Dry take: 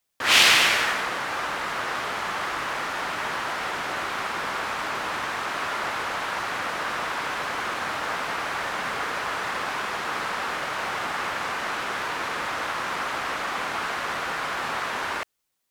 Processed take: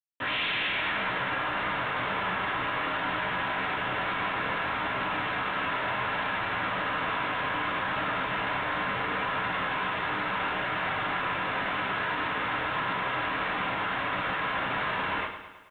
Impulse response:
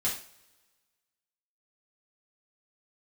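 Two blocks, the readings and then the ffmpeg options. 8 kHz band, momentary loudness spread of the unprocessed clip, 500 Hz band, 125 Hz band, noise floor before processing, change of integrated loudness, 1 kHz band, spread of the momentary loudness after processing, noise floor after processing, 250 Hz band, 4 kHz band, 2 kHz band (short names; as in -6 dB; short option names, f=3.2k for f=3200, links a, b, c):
under -35 dB, 5 LU, -1.5 dB, +5.0 dB, -31 dBFS, -3.5 dB, -1.5 dB, 1 LU, -32 dBFS, +2.0 dB, -8.0 dB, -2.5 dB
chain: -filter_complex "[0:a]lowshelf=f=100:g=9,acontrast=38[a];[1:a]atrim=start_sample=2205,asetrate=57330,aresample=44100[b];[a][b]afir=irnorm=-1:irlink=0,aresample=8000,asoftclip=type=tanh:threshold=-7.5dB,aresample=44100,alimiter=limit=-14dB:level=0:latency=1:release=25,aecho=1:1:107|214|321|428|535|642:0.316|0.174|0.0957|0.0526|0.0289|0.0159,acrusher=bits=9:mix=0:aa=0.000001,volume=-8.5dB"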